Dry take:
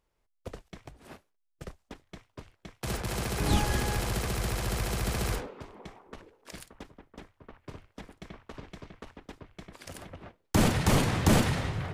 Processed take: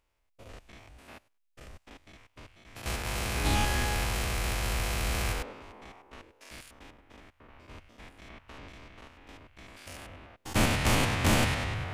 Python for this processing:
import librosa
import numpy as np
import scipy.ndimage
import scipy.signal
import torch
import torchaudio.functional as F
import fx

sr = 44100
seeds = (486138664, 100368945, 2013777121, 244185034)

y = fx.spec_steps(x, sr, hold_ms=100)
y = fx.graphic_eq_15(y, sr, hz=(160, 400, 2500), db=(-8, -5, 5))
y = y * librosa.db_to_amplitude(2.5)